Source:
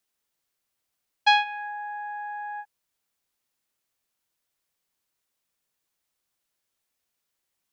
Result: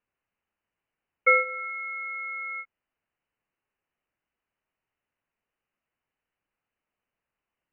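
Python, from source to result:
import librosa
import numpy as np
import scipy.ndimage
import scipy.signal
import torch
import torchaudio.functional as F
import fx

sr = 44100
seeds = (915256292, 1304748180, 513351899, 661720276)

y = fx.freq_invert(x, sr, carrier_hz=3000)
y = fx.air_absorb(y, sr, metres=150.0)
y = y * 10.0 ** (1.5 / 20.0)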